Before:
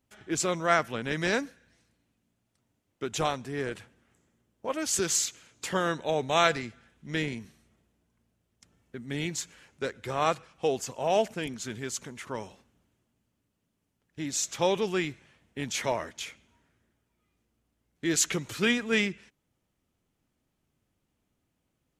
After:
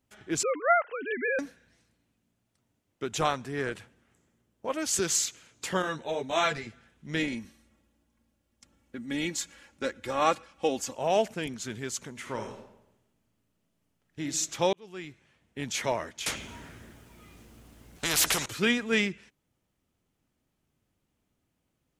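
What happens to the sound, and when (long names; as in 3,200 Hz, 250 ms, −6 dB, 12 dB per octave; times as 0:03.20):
0:00.43–0:01.39: three sine waves on the formant tracks
0:03.21–0:03.71: dynamic equaliser 1,400 Hz, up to +5 dB, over −43 dBFS, Q 1.4
0:05.82–0:06.67: string-ensemble chorus
0:07.19–0:10.95: comb filter 3.6 ms
0:12.11–0:14.22: thrown reverb, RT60 0.83 s, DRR 3.5 dB
0:14.73–0:15.74: fade in
0:16.26–0:18.46: every bin compressed towards the loudest bin 4 to 1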